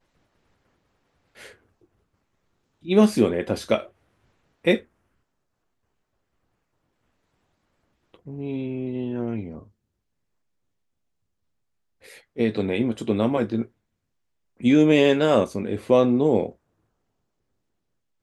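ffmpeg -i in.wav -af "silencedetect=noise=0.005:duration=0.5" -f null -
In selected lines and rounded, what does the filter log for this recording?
silence_start: 0.00
silence_end: 1.36 | silence_duration: 1.36
silence_start: 1.54
silence_end: 2.83 | silence_duration: 1.29
silence_start: 3.89
silence_end: 4.65 | silence_duration: 0.75
silence_start: 4.83
silence_end: 8.14 | silence_duration: 3.32
silence_start: 9.68
silence_end: 12.03 | silence_duration: 2.35
silence_start: 13.67
silence_end: 14.60 | silence_duration: 0.93
silence_start: 16.52
silence_end: 18.22 | silence_duration: 1.70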